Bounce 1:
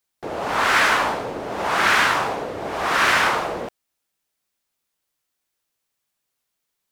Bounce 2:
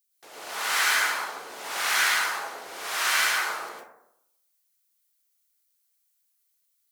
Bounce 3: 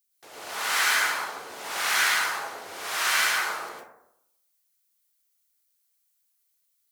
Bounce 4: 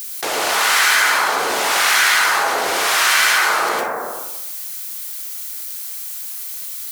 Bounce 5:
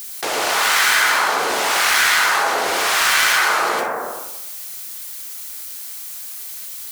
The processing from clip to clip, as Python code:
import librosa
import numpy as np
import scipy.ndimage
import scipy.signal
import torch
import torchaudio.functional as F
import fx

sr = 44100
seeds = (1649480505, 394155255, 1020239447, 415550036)

y1 = np.diff(x, prepend=0.0)
y1 = fx.rev_plate(y1, sr, seeds[0], rt60_s=0.8, hf_ratio=0.3, predelay_ms=95, drr_db=-5.5)
y2 = fx.peak_eq(y1, sr, hz=73.0, db=10.0, octaves=1.8)
y3 = fx.highpass(y2, sr, hz=200.0, slope=6)
y3 = fx.env_flatten(y3, sr, amount_pct=70)
y3 = y3 * 10.0 ** (7.5 / 20.0)
y4 = fx.self_delay(y3, sr, depth_ms=0.072)